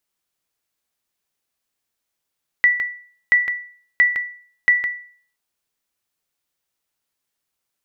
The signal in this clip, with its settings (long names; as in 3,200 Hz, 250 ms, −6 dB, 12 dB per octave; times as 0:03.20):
ping with an echo 1,960 Hz, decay 0.49 s, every 0.68 s, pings 4, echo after 0.16 s, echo −7.5 dB −7 dBFS